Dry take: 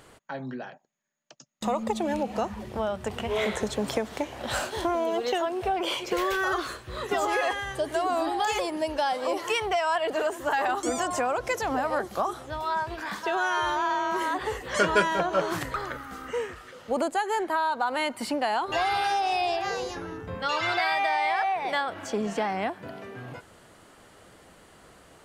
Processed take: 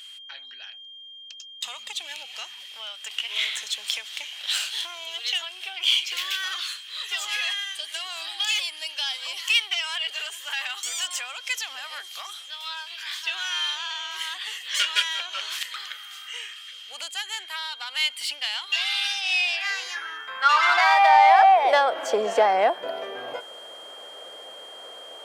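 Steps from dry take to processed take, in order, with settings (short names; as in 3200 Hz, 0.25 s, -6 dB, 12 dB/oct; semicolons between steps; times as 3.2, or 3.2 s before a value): self-modulated delay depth 0.066 ms; high-pass sweep 3000 Hz -> 550 Hz, 19.17–21.76; whine 3200 Hz -46 dBFS; gain +5 dB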